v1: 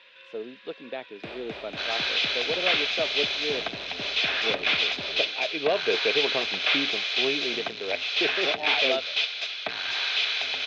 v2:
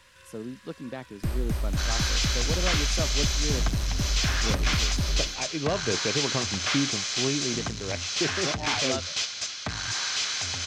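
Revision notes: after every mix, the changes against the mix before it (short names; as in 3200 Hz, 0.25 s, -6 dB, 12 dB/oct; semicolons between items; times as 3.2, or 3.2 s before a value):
master: remove speaker cabinet 370–3900 Hz, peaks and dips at 440 Hz +7 dB, 670 Hz +6 dB, 1100 Hz -4 dB, 2500 Hz +9 dB, 3600 Hz +9 dB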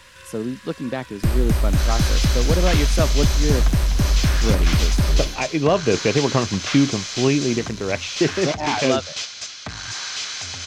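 speech +10.5 dB; first sound +9.5 dB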